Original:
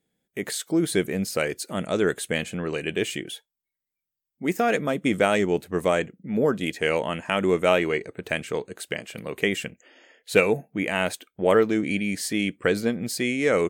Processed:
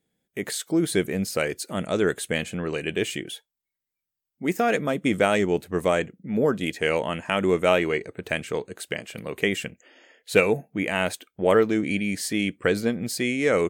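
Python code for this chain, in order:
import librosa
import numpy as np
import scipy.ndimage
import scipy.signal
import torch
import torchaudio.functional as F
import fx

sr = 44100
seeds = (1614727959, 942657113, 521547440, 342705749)

y = fx.peak_eq(x, sr, hz=90.0, db=2.5, octaves=0.77)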